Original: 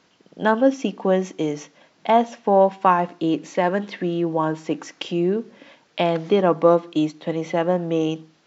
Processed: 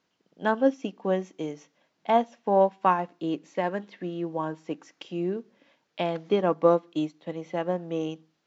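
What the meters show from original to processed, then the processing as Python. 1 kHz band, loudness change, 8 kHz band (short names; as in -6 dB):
-6.0 dB, -6.5 dB, n/a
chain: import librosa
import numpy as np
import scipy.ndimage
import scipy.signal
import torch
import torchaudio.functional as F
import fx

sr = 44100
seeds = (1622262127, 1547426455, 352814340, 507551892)

y = fx.upward_expand(x, sr, threshold_db=-33.0, expansion=1.5)
y = y * librosa.db_to_amplitude(-4.0)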